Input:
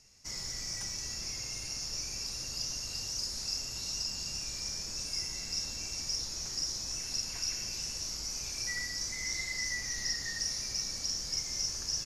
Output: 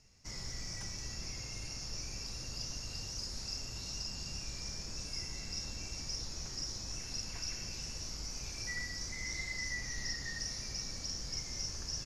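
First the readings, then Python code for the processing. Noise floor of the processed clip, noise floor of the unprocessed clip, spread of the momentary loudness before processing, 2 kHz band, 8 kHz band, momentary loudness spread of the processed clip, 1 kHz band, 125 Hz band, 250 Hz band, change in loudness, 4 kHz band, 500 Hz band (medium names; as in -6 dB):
-44 dBFS, -40 dBFS, 3 LU, -2.5 dB, -7.0 dB, 4 LU, -1.5 dB, +3.0 dB, +1.5 dB, -5.5 dB, -6.0 dB, -0.5 dB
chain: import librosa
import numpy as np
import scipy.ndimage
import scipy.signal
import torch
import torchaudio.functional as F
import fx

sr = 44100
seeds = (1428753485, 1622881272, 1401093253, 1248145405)

y = fx.lowpass(x, sr, hz=3700.0, slope=6)
y = fx.low_shelf(y, sr, hz=230.0, db=5.5)
y = F.gain(torch.from_numpy(y), -1.5).numpy()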